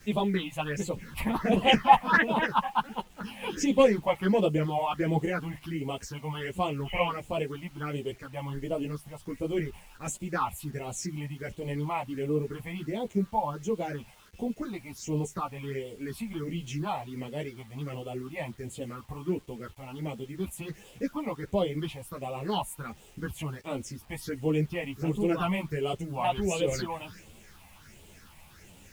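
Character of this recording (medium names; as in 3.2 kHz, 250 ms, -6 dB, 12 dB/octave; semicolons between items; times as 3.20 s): phasing stages 6, 1.4 Hz, lowest notch 380–1600 Hz; a quantiser's noise floor 10-bit, dither none; a shimmering, thickened sound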